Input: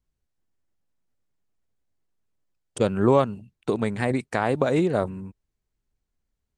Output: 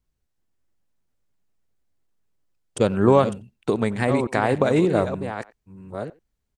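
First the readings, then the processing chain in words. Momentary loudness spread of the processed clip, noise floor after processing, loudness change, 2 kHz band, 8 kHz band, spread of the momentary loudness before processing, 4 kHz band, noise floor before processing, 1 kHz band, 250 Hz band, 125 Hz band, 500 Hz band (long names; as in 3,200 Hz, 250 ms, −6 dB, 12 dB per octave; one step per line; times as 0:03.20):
18 LU, −76 dBFS, +2.5 dB, +3.0 dB, +3.0 dB, 15 LU, +3.0 dB, −82 dBFS, +3.0 dB, +3.0 dB, +3.0 dB, +3.0 dB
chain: delay that plays each chunk backwards 610 ms, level −9.5 dB
far-end echo of a speakerphone 90 ms, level −20 dB
level +2.5 dB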